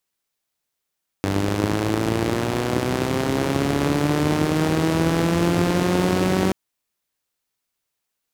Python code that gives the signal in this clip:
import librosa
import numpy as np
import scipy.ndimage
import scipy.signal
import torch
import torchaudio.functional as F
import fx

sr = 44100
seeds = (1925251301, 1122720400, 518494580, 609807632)

y = fx.engine_four_rev(sr, seeds[0], length_s=5.28, rpm=2900, resonances_hz=(100.0, 170.0, 290.0), end_rpm=5700)